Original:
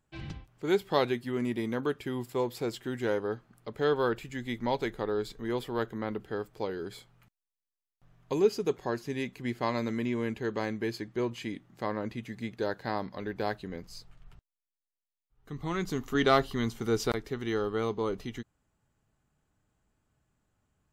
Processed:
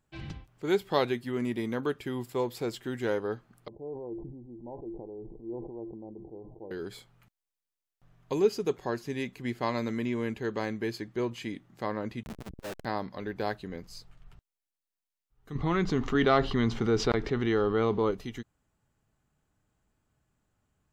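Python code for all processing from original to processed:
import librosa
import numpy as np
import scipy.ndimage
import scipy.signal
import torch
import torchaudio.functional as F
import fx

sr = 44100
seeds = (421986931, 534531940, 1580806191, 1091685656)

y = fx.chain(x, sr, fx.steep_lowpass(hz=870.0, slope=72),
    fx.comb_fb(f0_hz=340.0, decay_s=0.17, harmonics='odd', damping=0.0, mix_pct=80),
    fx.sustainer(db_per_s=37.0), at=(3.68, 6.71))
y = fx.chain(y, sr, fx.high_shelf(hz=8900.0, db=-7.0),
    fx.schmitt(flips_db=-41.5),
    fx.transformer_sat(knee_hz=230.0), at=(12.23, 12.85))
y = fx.chain(y, sr, fx.air_absorb(metres=170.0),
    fx.env_flatten(amount_pct=50), at=(15.55, 18.11))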